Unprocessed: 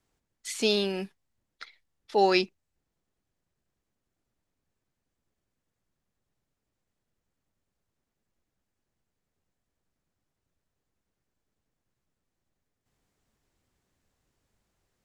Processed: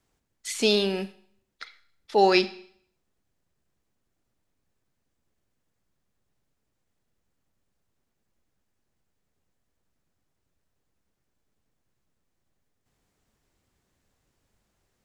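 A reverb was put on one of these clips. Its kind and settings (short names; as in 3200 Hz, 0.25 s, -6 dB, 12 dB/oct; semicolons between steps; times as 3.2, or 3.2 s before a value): Schroeder reverb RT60 0.61 s, combs from 30 ms, DRR 14.5 dB; gain +3 dB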